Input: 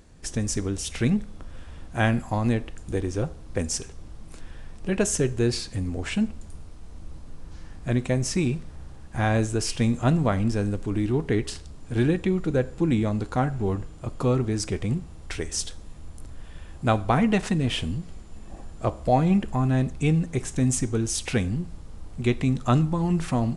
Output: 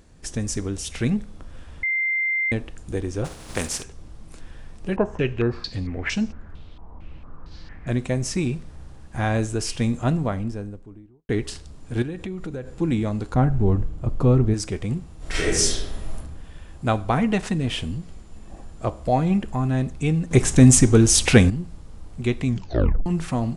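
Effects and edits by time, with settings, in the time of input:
0:01.83–0:02.52: beep over 2,090 Hz −20 dBFS
0:03.24–0:03.82: compressing power law on the bin magnitudes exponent 0.55
0:04.96–0:07.87: low-pass on a step sequencer 4.4 Hz 950–5,800 Hz
0:09.87–0:11.29: fade out and dull
0:12.02–0:12.74: downward compressor 5 to 1, threshold −28 dBFS
0:13.34–0:14.54: spectral tilt −2.5 dB per octave
0:15.17–0:16.15: thrown reverb, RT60 1 s, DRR −10.5 dB
0:20.31–0:21.50: clip gain +11 dB
0:22.47: tape stop 0.59 s

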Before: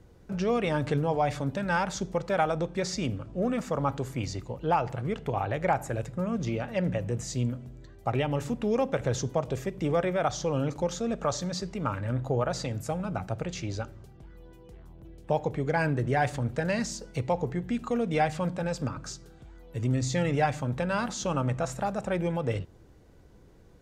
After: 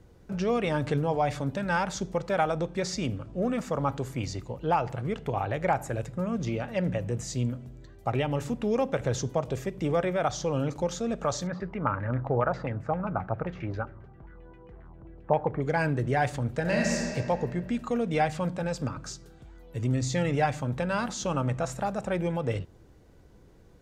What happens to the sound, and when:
0:11.47–0:15.62: auto-filter low-pass saw down 7.5 Hz 940–2,200 Hz
0:16.60–0:17.08: thrown reverb, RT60 2.3 s, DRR −1.5 dB

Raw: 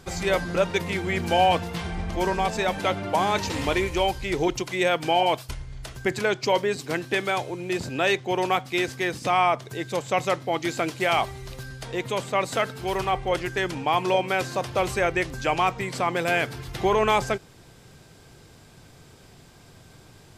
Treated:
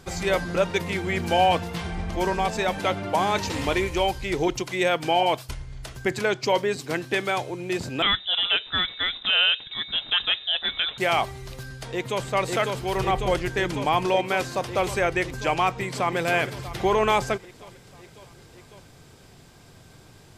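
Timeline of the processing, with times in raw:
0:08.02–0:10.98: voice inversion scrambler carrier 3,800 Hz
0:11.64–0:12.24: delay throw 550 ms, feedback 80%, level −2.5 dB
0:12.97–0:14.07: low-shelf EQ 210 Hz +6.5 dB
0:15.75–0:16.17: delay throw 320 ms, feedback 65%, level −11 dB

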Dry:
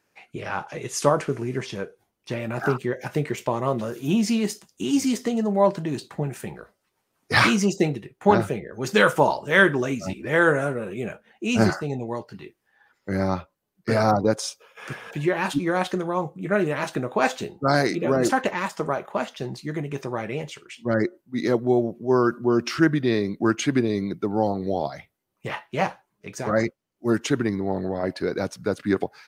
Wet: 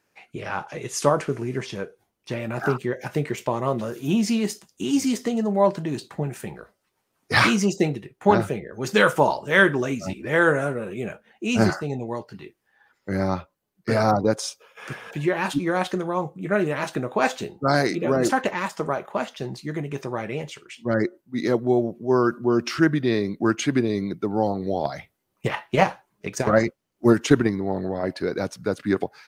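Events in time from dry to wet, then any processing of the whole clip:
0:24.84–0:27.52: transient designer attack +9 dB, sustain +4 dB

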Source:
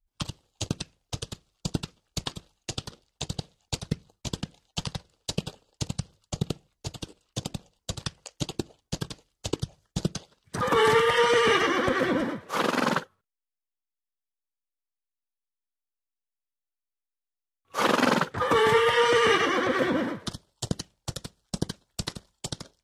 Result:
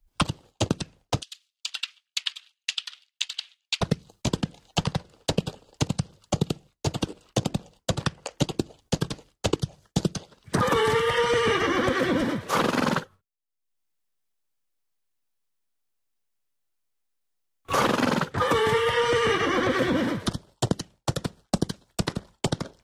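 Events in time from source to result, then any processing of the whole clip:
0:01.22–0:03.81: four-pole ladder high-pass 2,300 Hz, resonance 25%
whole clip: noise gate with hold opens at −55 dBFS; low-shelf EQ 480 Hz +3.5 dB; multiband upward and downward compressor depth 100%

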